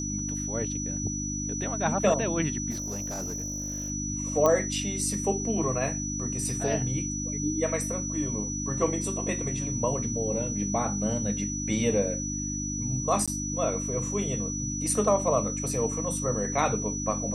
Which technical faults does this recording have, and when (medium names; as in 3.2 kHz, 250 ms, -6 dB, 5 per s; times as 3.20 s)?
hum 50 Hz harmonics 6 -34 dBFS
whine 5.9 kHz -33 dBFS
2.70–3.90 s: clipped -29.5 dBFS
4.46 s: pop -11 dBFS
13.26–13.28 s: dropout 16 ms